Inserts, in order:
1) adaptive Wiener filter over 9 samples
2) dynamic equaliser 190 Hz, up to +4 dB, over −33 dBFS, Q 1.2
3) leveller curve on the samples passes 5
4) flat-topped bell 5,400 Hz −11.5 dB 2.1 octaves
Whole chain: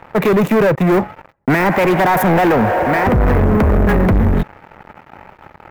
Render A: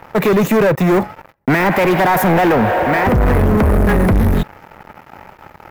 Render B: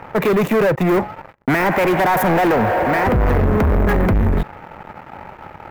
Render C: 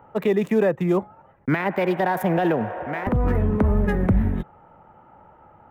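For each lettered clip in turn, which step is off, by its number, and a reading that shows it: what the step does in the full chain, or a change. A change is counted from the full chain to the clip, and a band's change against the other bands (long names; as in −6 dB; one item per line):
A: 1, 8 kHz band +3.5 dB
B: 2, change in momentary loudness spread +16 LU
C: 3, change in crest factor +6.5 dB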